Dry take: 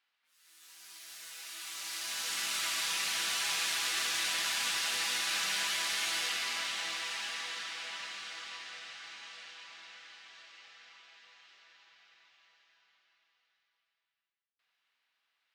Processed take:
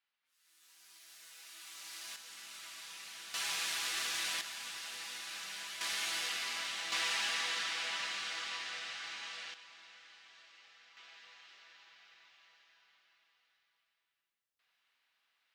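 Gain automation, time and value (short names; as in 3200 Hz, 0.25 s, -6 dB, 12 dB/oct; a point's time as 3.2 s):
-8 dB
from 2.16 s -15.5 dB
from 3.34 s -4 dB
from 4.41 s -11.5 dB
from 5.81 s -3.5 dB
from 6.92 s +3.5 dB
from 9.54 s -5.5 dB
from 10.97 s +1.5 dB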